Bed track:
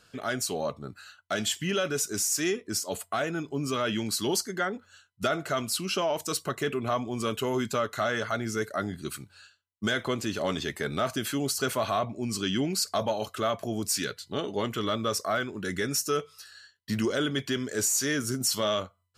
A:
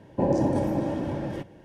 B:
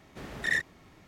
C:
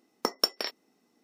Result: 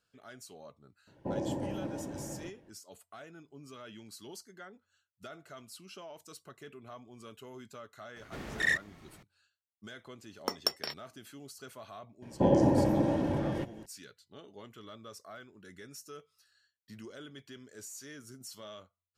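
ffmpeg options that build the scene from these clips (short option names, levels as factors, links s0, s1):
-filter_complex "[1:a]asplit=2[s0][s1];[0:a]volume=0.1[s2];[s0]atrim=end=1.64,asetpts=PTS-STARTPTS,volume=0.266,afade=t=in:d=0.004:c=hsin,afade=t=out:st=1.636:d=0.004:c=hsin,adelay=1070[s3];[2:a]atrim=end=1.07,asetpts=PTS-STARTPTS,volume=0.944,afade=t=in:d=0.004:c=hsin,afade=t=out:st=1.066:d=0.004:c=hsin,adelay=8160[s4];[3:a]atrim=end=1.23,asetpts=PTS-STARTPTS,volume=0.562,afade=t=in:d=0.004:c=hsin,afade=t=out:st=1.226:d=0.004:c=hsin,adelay=10230[s5];[s1]atrim=end=1.64,asetpts=PTS-STARTPTS,volume=0.891,afade=t=in:d=0.004:c=hsin,afade=t=out:st=1.636:d=0.004:c=hsin,adelay=12220[s6];[s2][s3][s4][s5][s6]amix=inputs=5:normalize=0"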